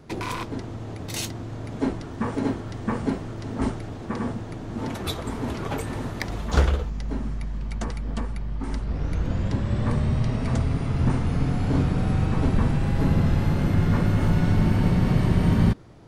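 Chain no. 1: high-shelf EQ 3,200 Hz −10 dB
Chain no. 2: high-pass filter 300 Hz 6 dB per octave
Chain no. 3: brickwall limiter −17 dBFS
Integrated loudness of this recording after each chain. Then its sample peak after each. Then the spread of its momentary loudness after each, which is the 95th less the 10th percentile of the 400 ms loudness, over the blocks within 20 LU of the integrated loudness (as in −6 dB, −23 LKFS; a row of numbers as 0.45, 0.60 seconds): −26.0, −31.5, −28.5 LKFS; −6.0, −13.0, −17.0 dBFS; 12, 11, 6 LU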